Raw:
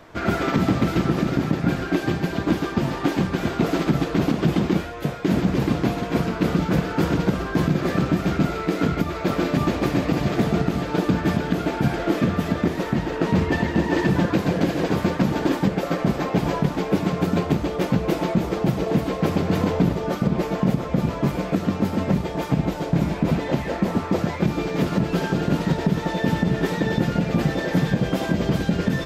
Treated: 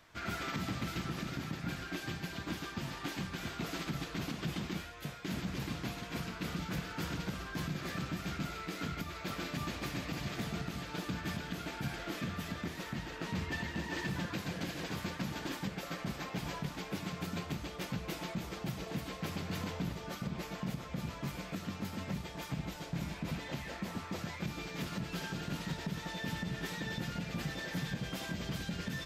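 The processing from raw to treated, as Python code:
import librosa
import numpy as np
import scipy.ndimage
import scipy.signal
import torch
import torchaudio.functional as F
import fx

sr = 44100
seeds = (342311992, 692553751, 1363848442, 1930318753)

p1 = fx.tone_stack(x, sr, knobs='5-5-5')
p2 = np.clip(p1, -10.0 ** (-32.0 / 20.0), 10.0 ** (-32.0 / 20.0))
p3 = p1 + (p2 * 10.0 ** (-5.0 / 20.0))
y = p3 * 10.0 ** (-4.5 / 20.0)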